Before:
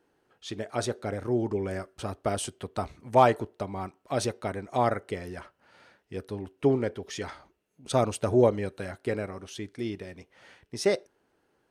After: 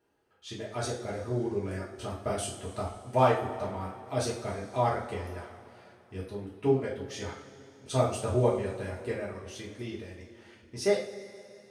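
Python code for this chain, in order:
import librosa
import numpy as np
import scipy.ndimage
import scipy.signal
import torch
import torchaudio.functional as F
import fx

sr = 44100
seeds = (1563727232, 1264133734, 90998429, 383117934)

y = fx.dereverb_blind(x, sr, rt60_s=0.52)
y = fx.rev_double_slope(y, sr, seeds[0], early_s=0.4, late_s=3.0, knee_db=-18, drr_db=-6.0)
y = y * librosa.db_to_amplitude(-8.5)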